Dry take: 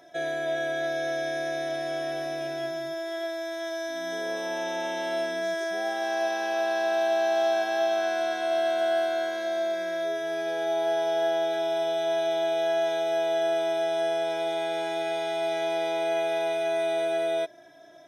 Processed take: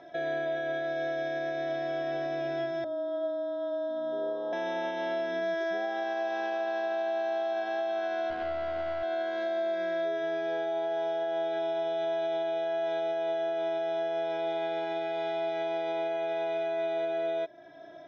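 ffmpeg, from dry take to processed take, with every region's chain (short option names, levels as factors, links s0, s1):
-filter_complex "[0:a]asettb=1/sr,asplit=3[s0][s1][s2];[s0]atrim=end=2.844[s3];[s1]atrim=start=2.84:end=4.53,asetpts=PTS-STARTPTS,afade=t=in:d=0.004:c=qsin,afade=t=out:st=1.686:d=0.004:c=qsin,afreqshift=-26,asuperstop=centerf=2300:order=4:qfactor=0.9,highpass=340,equalizer=f=360:t=q:w=4:g=-4,equalizer=f=820:t=q:w=4:g=-8,equalizer=f=1700:t=q:w=4:g=-9,lowpass=f=3100:w=0.5412,lowpass=f=3100:w=1.3066[s4];[s2]atrim=start=4.526[s5];[s3][s4]acrossfade=d=0.004:c1=hsin:c2=qsin[s6];[s6][s5]acrossfade=d=0.004:c1=qsin:c2=hsin,asettb=1/sr,asplit=3[s7][s8][s9];[s7]atrim=end=8.304[s10];[s8]atrim=start=8.3:end=9.03,asetpts=PTS-STARTPTS,afade=t=in:d=0.004:c=qsin,afade=t=out:st=0.726:d=0.004:c=qsin,adynamicsmooth=sensitivity=4:basefreq=750,aeval=exprs='clip(val(0),-1,0.0355)':c=same[s11];[s9]atrim=start=9.026[s12];[s10][s11]acrossfade=d=0.004:c1=hsin:c2=qsin[s13];[s13][s12]acrossfade=d=0.004:c1=qsin:c2=hsin,lowpass=f=4800:w=0.5412,lowpass=f=4800:w=1.3066,highshelf=f=2400:g=-7.5,alimiter=level_in=1.68:limit=0.0631:level=0:latency=1:release=365,volume=0.596,volume=1.58"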